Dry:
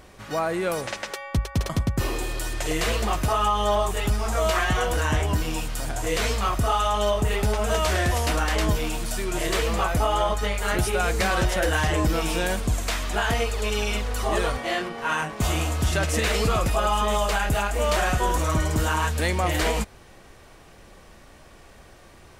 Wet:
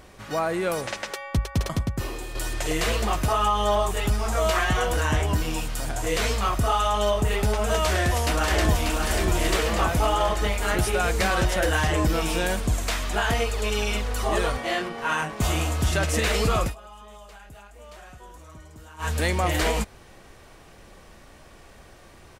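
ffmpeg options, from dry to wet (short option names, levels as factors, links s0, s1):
-filter_complex "[0:a]asplit=2[s0][s1];[s1]afade=t=in:st=7.81:d=0.01,afade=t=out:st=8.96:d=0.01,aecho=0:1:590|1180|1770|2360|2950|3540|4130|4720|5310|5900:0.595662|0.38718|0.251667|0.163584|0.106329|0.0691141|0.0449242|0.0292007|0.0189805|0.0123373[s2];[s0][s2]amix=inputs=2:normalize=0,asplit=4[s3][s4][s5][s6];[s3]atrim=end=2.35,asetpts=PTS-STARTPTS,afade=t=out:st=1.67:d=0.68:c=qua:silence=0.473151[s7];[s4]atrim=start=2.35:end=16.75,asetpts=PTS-STARTPTS,afade=t=in:d=0.004:c=hsin:silence=0.473151,afade=t=out:st=14.28:d=0.12:silence=0.0749894[s8];[s5]atrim=start=16.75:end=18.98,asetpts=PTS-STARTPTS,volume=0.075[s9];[s6]atrim=start=18.98,asetpts=PTS-STARTPTS,afade=t=in:d=0.12:silence=0.0749894[s10];[s7][s8][s9][s10]concat=n=4:v=0:a=1"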